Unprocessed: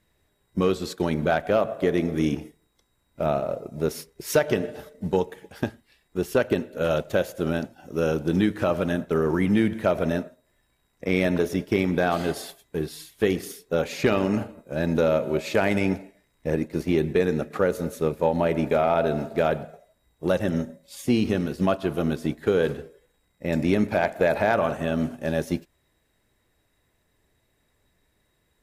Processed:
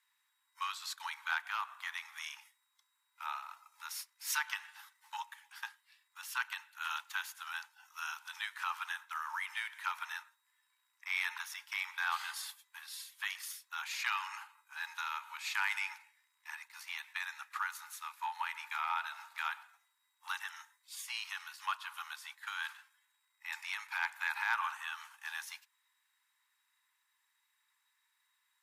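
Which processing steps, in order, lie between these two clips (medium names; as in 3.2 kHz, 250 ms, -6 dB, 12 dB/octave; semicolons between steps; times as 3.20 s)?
steep high-pass 880 Hz 96 dB/octave; trim -4.5 dB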